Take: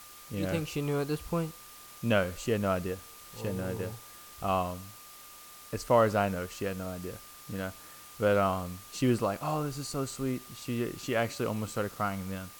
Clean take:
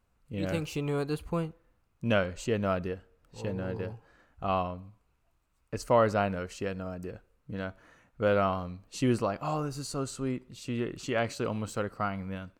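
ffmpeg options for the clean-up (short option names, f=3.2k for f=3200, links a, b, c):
-af "bandreject=f=1.2k:w=30,afftdn=nr=19:nf=-50"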